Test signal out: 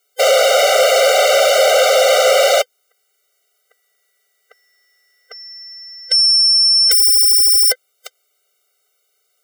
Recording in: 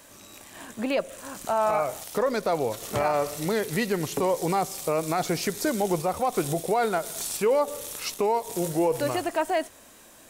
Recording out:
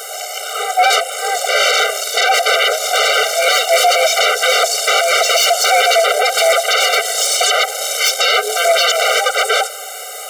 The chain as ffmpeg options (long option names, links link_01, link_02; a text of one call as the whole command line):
ffmpeg -i in.wav -filter_complex "[0:a]afftfilt=real='real(if(lt(b,1008),b+24*(1-2*mod(floor(b/24),2)),b),0)':imag='imag(if(lt(b,1008),b+24*(1-2*mod(floor(b/24),2)),b),0)':win_size=2048:overlap=0.75,acrossover=split=7200[link_01][link_02];[link_02]acompressor=threshold=-53dB:ratio=4:attack=1:release=60[link_03];[link_01][link_03]amix=inputs=2:normalize=0,aeval=exprs='0.251*sin(PI/2*7.94*val(0)/0.251)':channel_layout=same,aeval=exprs='val(0)+0.0178*(sin(2*PI*50*n/s)+sin(2*PI*2*50*n/s)/2+sin(2*PI*3*50*n/s)/3+sin(2*PI*4*50*n/s)/4+sin(2*PI*5*50*n/s)/5)':channel_layout=same,afftfilt=real='re*eq(mod(floor(b*sr/1024/390),2),1)':imag='im*eq(mod(floor(b*sr/1024/390),2),1)':win_size=1024:overlap=0.75,volume=5.5dB" out.wav